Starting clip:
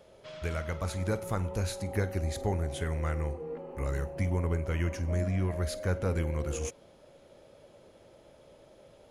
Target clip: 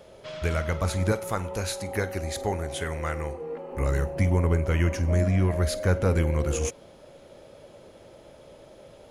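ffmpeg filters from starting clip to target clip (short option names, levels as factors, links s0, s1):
-filter_complex "[0:a]asettb=1/sr,asplit=3[s0][s1][s2];[s0]atrim=end=1.124[s3];[s1]atrim=start=1.12:end=3.72,asetpts=PTS-STARTPTS,afade=t=in:d=0.004:c=qsin,afade=t=out:st=2.596:d=0.004:c=qsin,lowshelf=f=310:g=-9.5[s4];[s2]atrim=start=3.716[s5];[s3][s4]acrossfade=d=0.004:c1=hsin:c2=qsin[s6];[s6][s5]acrossfade=d=0.004:c1=qsin:c2=hsin,volume=2.24"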